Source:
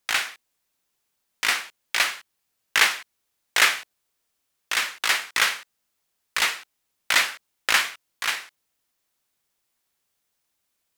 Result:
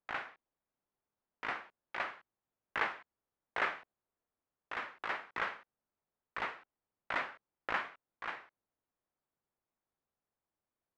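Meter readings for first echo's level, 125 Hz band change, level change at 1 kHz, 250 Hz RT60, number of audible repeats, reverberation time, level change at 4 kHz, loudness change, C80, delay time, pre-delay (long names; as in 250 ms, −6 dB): no echo audible, can't be measured, −9.5 dB, no reverb audible, no echo audible, no reverb audible, −26.0 dB, −16.5 dB, no reverb audible, no echo audible, no reverb audible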